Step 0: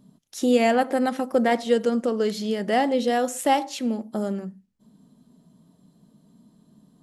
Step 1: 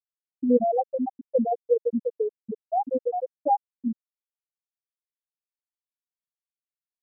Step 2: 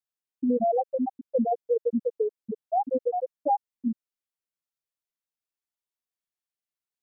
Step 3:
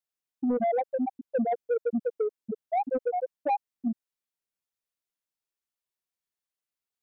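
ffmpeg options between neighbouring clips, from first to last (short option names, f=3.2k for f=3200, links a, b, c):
-af "afftfilt=real='re*gte(hypot(re,im),0.794)':imag='im*gte(hypot(re,im),0.794)':win_size=1024:overlap=0.75"
-af "alimiter=limit=-17dB:level=0:latency=1:release=36"
-af "asoftclip=type=tanh:threshold=-20dB"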